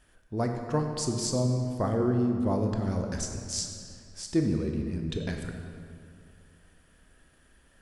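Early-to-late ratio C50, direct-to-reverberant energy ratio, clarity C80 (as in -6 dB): 4.5 dB, 3.0 dB, 5.5 dB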